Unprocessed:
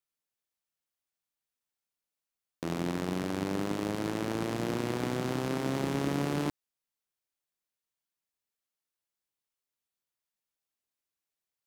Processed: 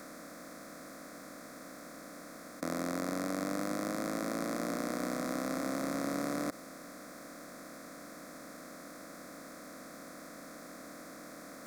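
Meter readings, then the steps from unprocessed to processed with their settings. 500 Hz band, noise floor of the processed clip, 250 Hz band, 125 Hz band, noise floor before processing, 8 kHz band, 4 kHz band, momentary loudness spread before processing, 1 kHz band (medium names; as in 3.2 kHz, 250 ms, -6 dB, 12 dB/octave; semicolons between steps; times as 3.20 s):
-2.5 dB, -50 dBFS, -3.0 dB, -10.5 dB, under -85 dBFS, +3.5 dB, -4.0 dB, 3 LU, -1.5 dB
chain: spectral levelling over time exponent 0.2; bass shelf 290 Hz -10 dB; static phaser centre 590 Hz, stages 8; dynamic bell 1.6 kHz, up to -6 dB, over -57 dBFS, Q 5.5; trim -1.5 dB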